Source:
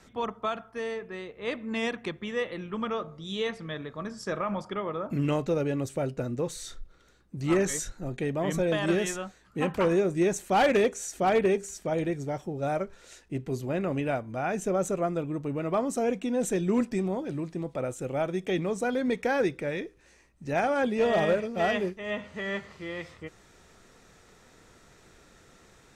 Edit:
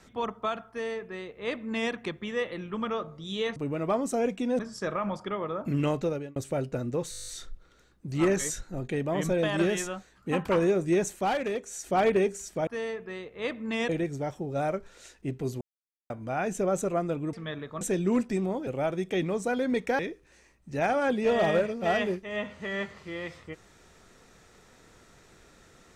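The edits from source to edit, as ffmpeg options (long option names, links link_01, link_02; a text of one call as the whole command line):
ffmpeg -i in.wav -filter_complex "[0:a]asplit=22[link_01][link_02][link_03][link_04][link_05][link_06][link_07][link_08][link_09][link_10][link_11][link_12][link_13][link_14][link_15][link_16][link_17][link_18][link_19][link_20][link_21][link_22];[link_01]atrim=end=3.562[link_23];[link_02]atrim=start=15.398:end=16.432[link_24];[link_03]atrim=start=4.038:end=5.81,asetpts=PTS-STARTPTS,afade=type=out:start_time=1.422:duration=0.35[link_25];[link_04]atrim=start=5.81:end=6.582,asetpts=PTS-STARTPTS,afade=type=in:duration=0.004:curve=hsin[link_26];[link_05]atrim=start=6.558:end=6.582[link_27];[link_06]atrim=start=6.558:end=6.582[link_28];[link_07]atrim=start=6.558:end=6.582[link_29];[link_08]atrim=start=6.558:end=6.582[link_30];[link_09]atrim=start=6.558:end=6.582[link_31];[link_10]atrim=start=6.558:end=6.582[link_32];[link_11]atrim=start=6.558:end=6.582[link_33];[link_12]atrim=start=6.558:end=10.67,asetpts=PTS-STARTPTS,afade=type=out:start_time=3.832:duration=0.28:silence=0.398107[link_34];[link_13]atrim=start=10.67:end=10.89,asetpts=PTS-STARTPTS,volume=-8dB[link_35];[link_14]atrim=start=10.89:end=11.962,asetpts=PTS-STARTPTS,afade=type=in:duration=0.28:silence=0.398107[link_36];[link_15]atrim=start=0.698:end=1.922[link_37];[link_16]atrim=start=11.958:end=13.68,asetpts=PTS-STARTPTS,afade=type=out:start_time=1.718:duration=0.004:curve=hsin[link_38];[link_17]atrim=start=13.68:end=14.17,asetpts=PTS-STARTPTS,volume=0[link_39];[link_18]atrim=start=14.17:end=15.402,asetpts=PTS-STARTPTS,afade=type=in:duration=0.004:curve=hsin[link_40];[link_19]atrim=start=3.558:end=4.042[link_41];[link_20]atrim=start=16.428:end=17.292[link_42];[link_21]atrim=start=18.028:end=19.352[link_43];[link_22]atrim=start=19.728[link_44];[link_23][link_24]acrossfade=duration=0.004:curve1=hsin:curve2=hsin[link_45];[link_25][link_26]concat=n=2:v=0:a=1[link_46];[link_45][link_46]acrossfade=duration=0.004:curve1=hsin:curve2=hsin[link_47];[link_47][link_27]acrossfade=duration=0.004:curve1=hsin:curve2=hsin[link_48];[link_48][link_28]acrossfade=duration=0.004:curve1=hsin:curve2=hsin[link_49];[link_49][link_29]acrossfade=duration=0.004:curve1=hsin:curve2=hsin[link_50];[link_50][link_30]acrossfade=duration=0.004:curve1=hsin:curve2=hsin[link_51];[link_51][link_31]acrossfade=duration=0.004:curve1=hsin:curve2=hsin[link_52];[link_52][link_32]acrossfade=duration=0.004:curve1=hsin:curve2=hsin[link_53];[link_53][link_33]acrossfade=duration=0.004:curve1=hsin:curve2=hsin[link_54];[link_34][link_35][link_36]concat=n=3:v=0:a=1[link_55];[link_54][link_55]acrossfade=duration=0.004:curve1=hsin:curve2=hsin[link_56];[link_56][link_37]acrossfade=duration=0.004:curve1=hsin:curve2=hsin[link_57];[link_38][link_39][link_40]concat=n=3:v=0:a=1[link_58];[link_57][link_58]acrossfade=duration=0.004:curve1=hsin:curve2=hsin[link_59];[link_59][link_41]acrossfade=duration=0.004:curve1=hsin:curve2=hsin[link_60];[link_60][link_42]acrossfade=duration=0.004:curve1=hsin:curve2=hsin[link_61];[link_61][link_43]acrossfade=duration=0.004:curve1=hsin:curve2=hsin[link_62];[link_62][link_44]acrossfade=duration=0.004:curve1=hsin:curve2=hsin" out.wav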